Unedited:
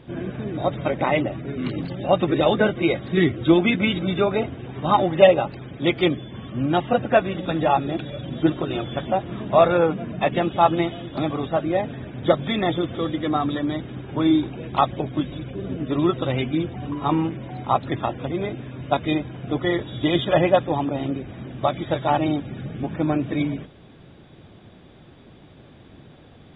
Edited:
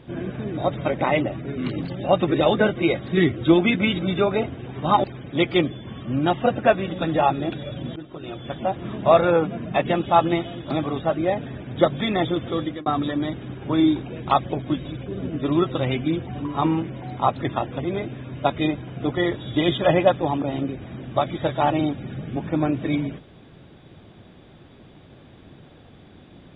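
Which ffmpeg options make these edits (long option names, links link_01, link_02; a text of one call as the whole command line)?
ffmpeg -i in.wav -filter_complex "[0:a]asplit=4[link_01][link_02][link_03][link_04];[link_01]atrim=end=5.042[link_05];[link_02]atrim=start=5.508:end=8.43,asetpts=PTS-STARTPTS,afade=type=out:start_time=2.918:duration=0.004:curve=hsin:silence=0.0891251[link_06];[link_03]atrim=start=8.43:end=13.33,asetpts=PTS-STARTPTS,afade=type=in:duration=0.93:silence=0.0891251,afade=type=out:start_time=4.61:duration=0.29:curve=qsin[link_07];[link_04]atrim=start=13.33,asetpts=PTS-STARTPTS,afade=type=in:duration=0.004:curve=hsin[link_08];[link_06][link_07][link_08]concat=n=3:v=0:a=1[link_09];[link_05][link_09]acrossfade=duration=0.004:curve1=hsin:curve2=hsin" out.wav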